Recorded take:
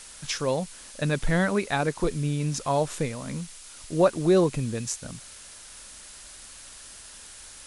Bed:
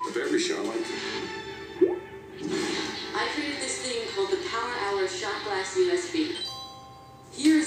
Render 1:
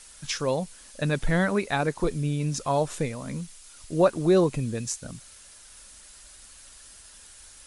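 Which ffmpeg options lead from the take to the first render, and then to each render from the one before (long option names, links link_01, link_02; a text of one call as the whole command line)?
ffmpeg -i in.wav -af "afftdn=noise_reduction=6:noise_floor=-46" out.wav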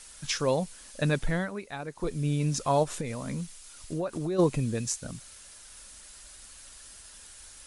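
ffmpeg -i in.wav -filter_complex "[0:a]asplit=3[link_01][link_02][link_03];[link_01]afade=type=out:start_time=2.83:duration=0.02[link_04];[link_02]acompressor=threshold=-28dB:ratio=6:attack=3.2:release=140:knee=1:detection=peak,afade=type=in:start_time=2.83:duration=0.02,afade=type=out:start_time=4.38:duration=0.02[link_05];[link_03]afade=type=in:start_time=4.38:duration=0.02[link_06];[link_04][link_05][link_06]amix=inputs=3:normalize=0,asplit=3[link_07][link_08][link_09];[link_07]atrim=end=1.51,asetpts=PTS-STARTPTS,afade=type=out:start_time=1.09:duration=0.42:silence=0.251189[link_10];[link_08]atrim=start=1.51:end=1.91,asetpts=PTS-STARTPTS,volume=-12dB[link_11];[link_09]atrim=start=1.91,asetpts=PTS-STARTPTS,afade=type=in:duration=0.42:silence=0.251189[link_12];[link_10][link_11][link_12]concat=n=3:v=0:a=1" out.wav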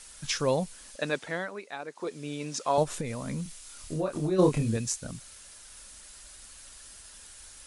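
ffmpeg -i in.wav -filter_complex "[0:a]asettb=1/sr,asplit=3[link_01][link_02][link_03];[link_01]atrim=end=0.964[link_04];[link_02]atrim=start=0.96:end=2.78,asetpts=PTS-STARTPTS,afade=type=in:duration=0.004:curve=qsin,afade=type=out:start_time=1.816:duration=0.004:curve=qsin,highpass=340,lowpass=8000[link_05];[link_03]atrim=start=2.776[link_06];[link_04][link_05]acrossfade=duration=0.004:curve1=hsin:curve2=qsin[link_07];[link_07][link_06]acrossfade=duration=0.004:curve1=qsin:curve2=hsin,asettb=1/sr,asplit=3[link_08][link_09][link_10];[link_08]atrim=end=3.434[link_11];[link_09]atrim=start=3.43:end=4.77,asetpts=PTS-STARTPTS,afade=type=in:duration=0.004:curve=qsin,afade=type=out:start_time=1.336:duration=0.004:curve=qsin,asplit=2[link_12][link_13];[link_13]adelay=27,volume=-3dB[link_14];[link_12][link_14]amix=inputs=2:normalize=0,atrim=end_sample=59094[link_15];[link_10]atrim=start=4.766[link_16];[link_11][link_15]acrossfade=duration=0.004:curve1=hsin:curve2=qsin[link_17];[link_17][link_16]acrossfade=duration=0.004:curve1=qsin:curve2=hsin" out.wav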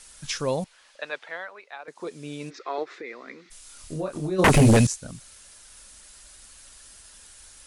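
ffmpeg -i in.wav -filter_complex "[0:a]asettb=1/sr,asplit=3[link_01][link_02][link_03];[link_01]atrim=end=0.644[link_04];[link_02]atrim=start=0.64:end=1.88,asetpts=PTS-STARTPTS,afade=type=in:duration=0.004:curve=qsin,afade=type=out:start_time=1.236:duration=0.004:curve=qsin,acrossover=split=520 4400:gain=0.0708 1 0.141[link_05][link_06][link_07];[link_05][link_06][link_07]amix=inputs=3:normalize=0[link_08];[link_03]atrim=start=1.876[link_09];[link_04][link_08]acrossfade=duration=0.004:curve1=hsin:curve2=qsin[link_10];[link_10][link_09]acrossfade=duration=0.004:curve1=qsin:curve2=hsin,asplit=3[link_11][link_12][link_13];[link_11]afade=type=out:start_time=2.49:duration=0.02[link_14];[link_12]highpass=frequency=360:width=0.5412,highpass=frequency=360:width=1.3066,equalizer=frequency=360:width_type=q:width=4:gain=8,equalizer=frequency=590:width_type=q:width=4:gain=-10,equalizer=frequency=910:width_type=q:width=4:gain=-8,equalizer=frequency=1300:width_type=q:width=4:gain=3,equalizer=frequency=2000:width_type=q:width=4:gain=9,equalizer=frequency=3000:width_type=q:width=4:gain=-9,lowpass=frequency=4100:width=0.5412,lowpass=frequency=4100:width=1.3066,afade=type=in:start_time=2.49:duration=0.02,afade=type=out:start_time=3.5:duration=0.02[link_15];[link_13]afade=type=in:start_time=3.5:duration=0.02[link_16];[link_14][link_15][link_16]amix=inputs=3:normalize=0,asettb=1/sr,asplit=3[link_17][link_18][link_19];[link_17]atrim=end=4.444[link_20];[link_18]atrim=start=4.44:end=4.87,asetpts=PTS-STARTPTS,afade=type=in:duration=0.004:curve=qsin,afade=type=out:start_time=0.426:duration=0.004:curve=qsin,aeval=exprs='0.266*sin(PI/2*5.01*val(0)/0.266)':channel_layout=same[link_21];[link_19]atrim=start=4.866[link_22];[link_20][link_21]acrossfade=duration=0.004:curve1=hsin:curve2=qsin[link_23];[link_23][link_22]acrossfade=duration=0.004:curve1=qsin:curve2=hsin" out.wav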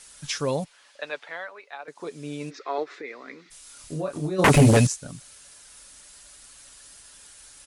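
ffmpeg -i in.wav -af "highpass=frequency=60:poles=1,aecho=1:1:7:0.33" out.wav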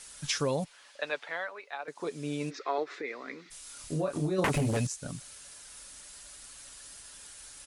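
ffmpeg -i in.wav -af "acompressor=threshold=-25dB:ratio=16" out.wav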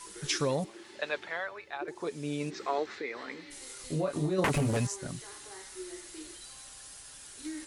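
ffmpeg -i in.wav -i bed.wav -filter_complex "[1:a]volume=-20dB[link_01];[0:a][link_01]amix=inputs=2:normalize=0" out.wav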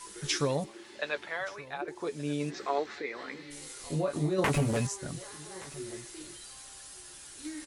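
ffmpeg -i in.wav -filter_complex "[0:a]asplit=2[link_01][link_02];[link_02]adelay=14,volume=-11dB[link_03];[link_01][link_03]amix=inputs=2:normalize=0,aecho=1:1:1174:0.0944" out.wav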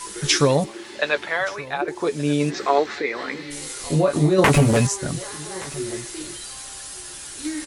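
ffmpeg -i in.wav -af "volume=12dB" out.wav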